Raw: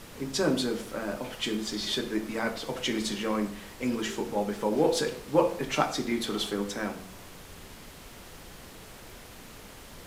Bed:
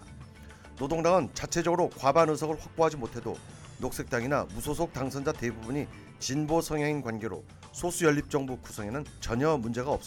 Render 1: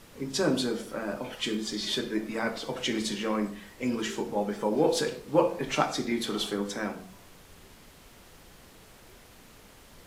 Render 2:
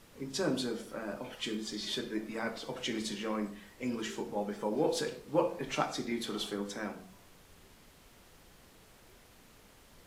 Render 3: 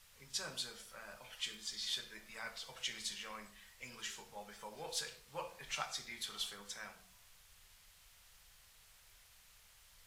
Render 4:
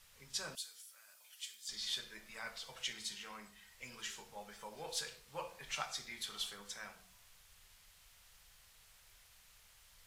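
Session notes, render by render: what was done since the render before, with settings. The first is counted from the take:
noise print and reduce 6 dB
trim -6 dB
amplifier tone stack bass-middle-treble 10-0-10
0.55–1.69 s: differentiator; 2.93–3.72 s: comb of notches 570 Hz

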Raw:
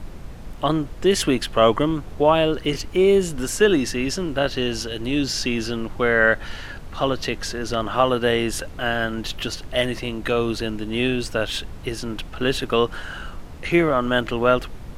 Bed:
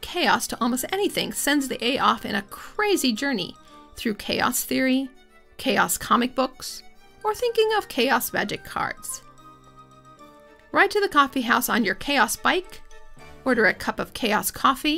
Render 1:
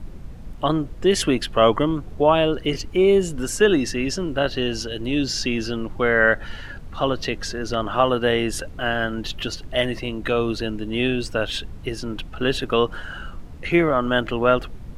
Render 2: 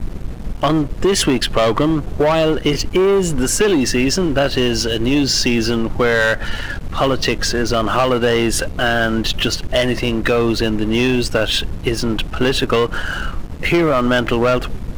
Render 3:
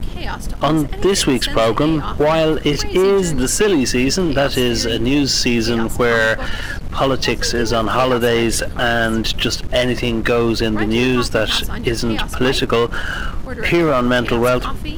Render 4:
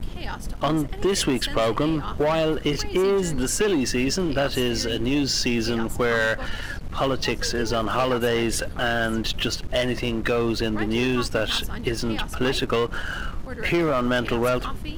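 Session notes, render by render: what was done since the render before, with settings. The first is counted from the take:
noise reduction 7 dB, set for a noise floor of -37 dBFS
waveshaping leveller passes 3; compression, threshold -12 dBFS, peak gain reduction 6 dB
add bed -8 dB
trim -7 dB

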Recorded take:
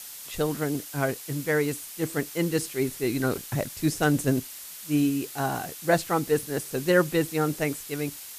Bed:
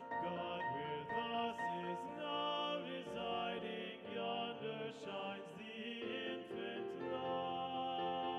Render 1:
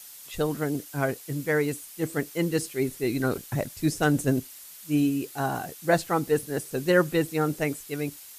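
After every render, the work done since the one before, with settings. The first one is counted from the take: noise reduction 6 dB, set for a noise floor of -42 dBFS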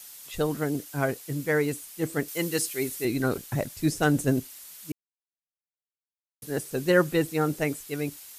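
2.28–3.05 s: tilt EQ +2 dB/octave; 4.92–6.42 s: mute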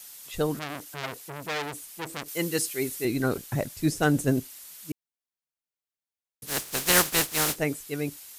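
0.59–2.30 s: transformer saturation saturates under 3.9 kHz; 6.46–7.55 s: spectral contrast reduction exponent 0.29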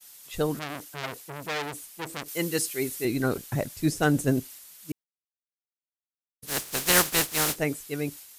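expander -41 dBFS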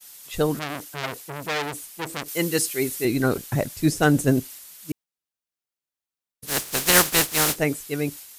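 trim +4.5 dB; peak limiter -3 dBFS, peak gain reduction 2 dB

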